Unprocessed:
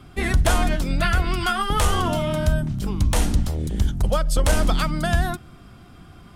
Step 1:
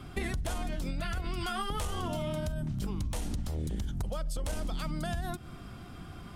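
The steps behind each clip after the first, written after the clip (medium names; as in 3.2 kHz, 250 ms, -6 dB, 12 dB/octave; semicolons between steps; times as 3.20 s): dynamic bell 1.5 kHz, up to -4 dB, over -36 dBFS, Q 1.1; peak limiter -15.5 dBFS, peak gain reduction 6 dB; compression 12:1, threshold -30 dBFS, peak gain reduction 12 dB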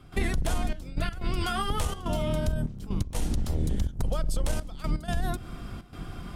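octave divider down 2 oct, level +1 dB; trance gate ".xxxxx..x.xxxxxx" 124 bpm -12 dB; trim +4.5 dB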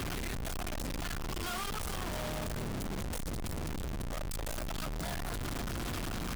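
one-bit comparator; trim -8.5 dB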